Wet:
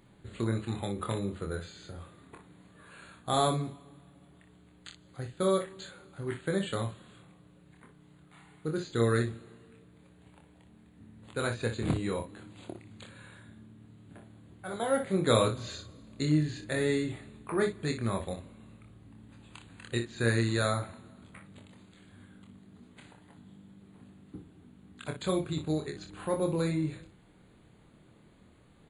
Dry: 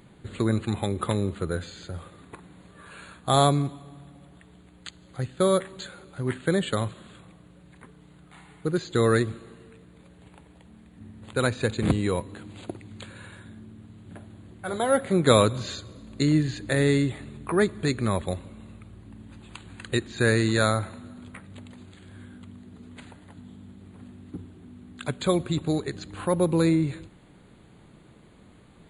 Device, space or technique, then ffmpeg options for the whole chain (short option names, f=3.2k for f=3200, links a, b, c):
slapback doubling: -filter_complex "[0:a]asplit=3[a][b][c];[b]adelay=26,volume=-4.5dB[d];[c]adelay=60,volume=-9.5dB[e];[a][d][e]amix=inputs=3:normalize=0,volume=-8dB"